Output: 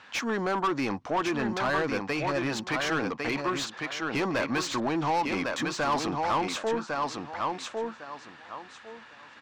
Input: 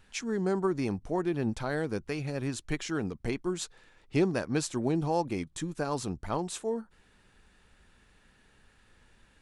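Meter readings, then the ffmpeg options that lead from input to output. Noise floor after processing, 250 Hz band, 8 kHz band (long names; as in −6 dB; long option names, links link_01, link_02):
−50 dBFS, +1.0 dB, +1.0 dB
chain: -filter_complex "[0:a]highpass=120,equalizer=frequency=180:width_type=q:width=4:gain=-6,equalizer=frequency=400:width_type=q:width=4:gain=-8,equalizer=frequency=1100:width_type=q:width=4:gain=6,lowpass=frequency=6600:width=0.5412,lowpass=frequency=6600:width=1.3066,acrossover=split=890[link_01][link_02];[link_01]alimiter=level_in=3dB:limit=-24dB:level=0:latency=1,volume=-3dB[link_03];[link_03][link_02]amix=inputs=2:normalize=0,aecho=1:1:1103|2206|3309:0.473|0.0852|0.0153,asplit=2[link_04][link_05];[link_05]highpass=frequency=720:poles=1,volume=22dB,asoftclip=type=tanh:threshold=-18dB[link_06];[link_04][link_06]amix=inputs=2:normalize=0,lowpass=frequency=2600:poles=1,volume=-6dB"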